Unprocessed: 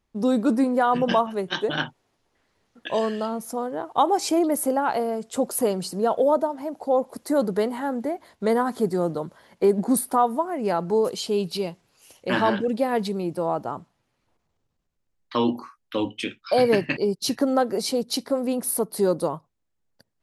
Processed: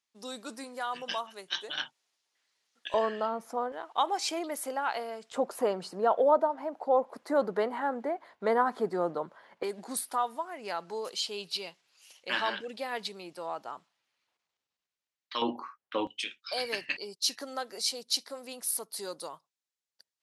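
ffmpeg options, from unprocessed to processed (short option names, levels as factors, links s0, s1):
-af "asetnsamples=n=441:p=0,asendcmd='2.94 bandpass f 1200;3.72 bandpass f 2900;5.32 bandpass f 1200;9.63 bandpass f 3600;15.42 bandpass f 1200;16.07 bandpass f 5100',bandpass=f=5800:t=q:w=0.73:csg=0"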